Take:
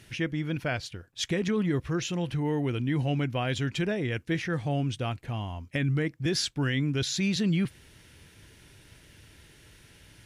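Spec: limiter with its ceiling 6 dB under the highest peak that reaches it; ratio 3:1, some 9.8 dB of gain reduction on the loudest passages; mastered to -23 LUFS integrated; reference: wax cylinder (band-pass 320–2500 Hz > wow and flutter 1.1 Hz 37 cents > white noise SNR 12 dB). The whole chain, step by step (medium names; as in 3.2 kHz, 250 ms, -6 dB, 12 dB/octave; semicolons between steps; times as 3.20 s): compression 3:1, threshold -37 dBFS; peak limiter -30.5 dBFS; band-pass 320–2500 Hz; wow and flutter 1.1 Hz 37 cents; white noise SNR 12 dB; trim +22.5 dB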